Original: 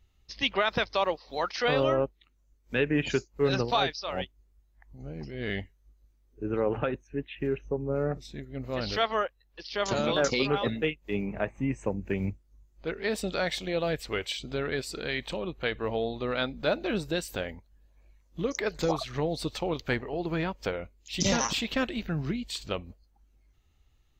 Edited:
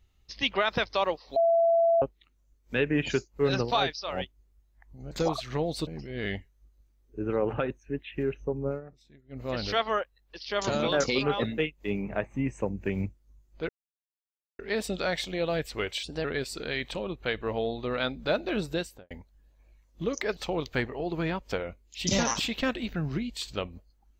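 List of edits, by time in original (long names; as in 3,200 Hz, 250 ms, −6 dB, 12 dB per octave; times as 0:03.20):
0:01.36–0:02.02: beep over 670 Hz −19 dBFS
0:07.92–0:08.65: duck −16.5 dB, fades 0.13 s
0:12.93: splice in silence 0.90 s
0:14.37–0:14.62: play speed 116%
0:17.11–0:17.48: fade out and dull
0:18.74–0:19.50: move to 0:05.11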